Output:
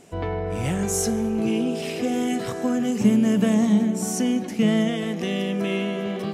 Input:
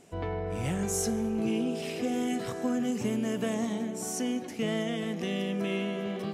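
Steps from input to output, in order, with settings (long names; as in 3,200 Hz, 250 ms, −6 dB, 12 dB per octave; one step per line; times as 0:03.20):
0:02.99–0:04.90: parametric band 200 Hz +13 dB 0.29 octaves
level +6 dB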